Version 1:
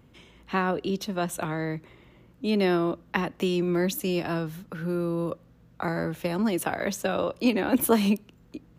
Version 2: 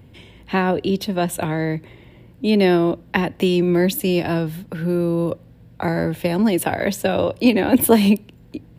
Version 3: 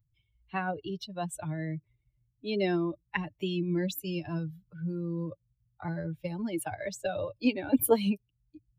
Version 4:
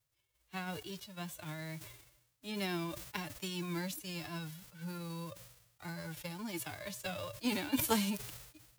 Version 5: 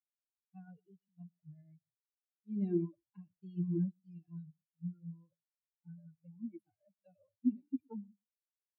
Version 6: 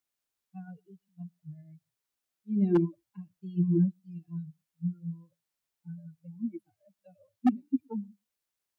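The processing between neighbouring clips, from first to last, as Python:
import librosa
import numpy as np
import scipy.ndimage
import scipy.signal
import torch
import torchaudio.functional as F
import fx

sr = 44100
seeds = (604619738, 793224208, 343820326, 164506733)

y1 = fx.graphic_eq_31(x, sr, hz=(100, 1250, 6300), db=(10, -12, -9))
y1 = y1 * librosa.db_to_amplitude(8.0)
y2 = fx.bin_expand(y1, sr, power=2.0)
y2 = y2 + 0.38 * np.pad(y2, (int(6.8 * sr / 1000.0), 0))[:len(y2)]
y2 = y2 * librosa.db_to_amplitude(-8.5)
y3 = fx.envelope_flatten(y2, sr, power=0.3)
y3 = fx.wow_flutter(y3, sr, seeds[0], rate_hz=2.1, depth_cents=22.0)
y3 = fx.sustainer(y3, sr, db_per_s=62.0)
y3 = y3 * librosa.db_to_amplitude(-9.0)
y4 = fx.fade_out_tail(y3, sr, length_s=2.35)
y4 = y4 + 10.0 ** (-10.0 / 20.0) * np.pad(y4, (int(117 * sr / 1000.0), 0))[:len(y4)]
y4 = fx.spectral_expand(y4, sr, expansion=4.0)
y4 = y4 * librosa.db_to_amplitude(1.5)
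y5 = 10.0 ** (-24.5 / 20.0) * (np.abs((y4 / 10.0 ** (-24.5 / 20.0) + 3.0) % 4.0 - 2.0) - 1.0)
y5 = y5 * librosa.db_to_amplitude(9.0)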